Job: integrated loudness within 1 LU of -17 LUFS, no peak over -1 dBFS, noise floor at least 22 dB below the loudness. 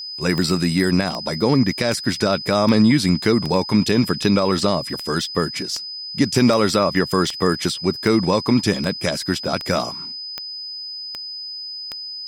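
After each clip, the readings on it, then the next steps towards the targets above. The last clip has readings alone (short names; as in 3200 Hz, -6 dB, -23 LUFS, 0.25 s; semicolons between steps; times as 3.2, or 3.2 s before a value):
clicks 16; steady tone 5000 Hz; tone level -29 dBFS; loudness -20.0 LUFS; peak -4.0 dBFS; loudness target -17.0 LUFS
-> de-click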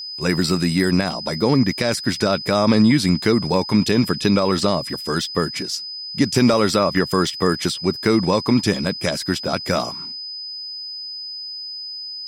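clicks 0; steady tone 5000 Hz; tone level -29 dBFS
-> notch 5000 Hz, Q 30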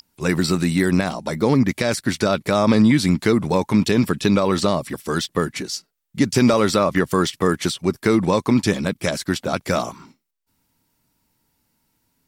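steady tone none; loudness -19.5 LUFS; peak -4.5 dBFS; loudness target -17.0 LUFS
-> gain +2.5 dB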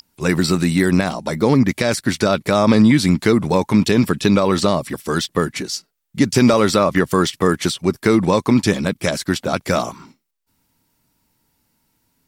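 loudness -17.0 LUFS; peak -2.0 dBFS; noise floor -68 dBFS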